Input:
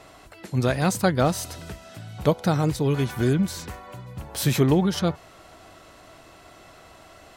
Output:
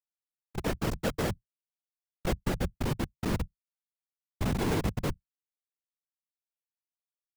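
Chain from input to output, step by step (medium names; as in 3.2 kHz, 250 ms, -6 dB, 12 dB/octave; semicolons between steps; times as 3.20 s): dynamic bell 230 Hz, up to -4 dB, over -34 dBFS, Q 1.6; Schmitt trigger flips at -18.5 dBFS; whisper effect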